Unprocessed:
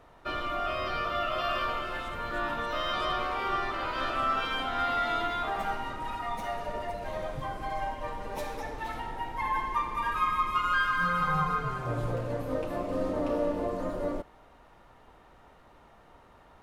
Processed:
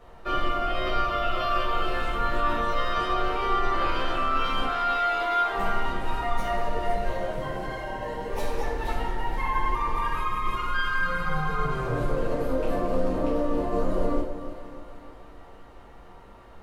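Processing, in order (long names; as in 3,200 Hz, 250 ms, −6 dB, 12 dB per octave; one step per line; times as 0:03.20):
0:04.67–0:05.52: high-pass filter 450 Hz 12 dB per octave
brickwall limiter −24.5 dBFS, peak gain reduction 8 dB
0:07.10–0:08.30: notch comb filter 1,200 Hz
echo with a time of its own for lows and highs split 1,300 Hz, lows 300 ms, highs 471 ms, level −12 dB
convolution reverb RT60 0.45 s, pre-delay 5 ms, DRR −3.5 dB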